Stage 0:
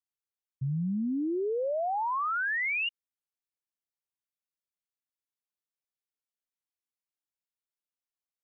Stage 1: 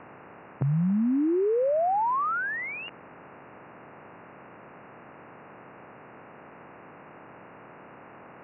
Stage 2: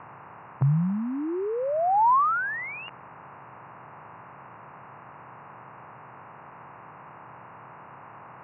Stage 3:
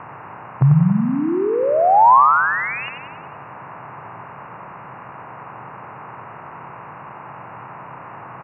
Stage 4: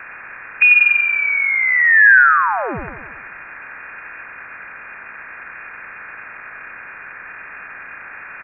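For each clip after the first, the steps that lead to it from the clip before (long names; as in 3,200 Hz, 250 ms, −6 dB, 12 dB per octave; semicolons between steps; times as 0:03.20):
compressor on every frequency bin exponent 0.4; low-pass filter 1,200 Hz 12 dB per octave; level +4.5 dB
octave-band graphic EQ 125/250/500/1,000 Hz +9/−5/−3/+10 dB; level −2.5 dB
repeating echo 92 ms, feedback 56%, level −7 dB; level +8.5 dB
voice inversion scrambler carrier 2,600 Hz; level +1.5 dB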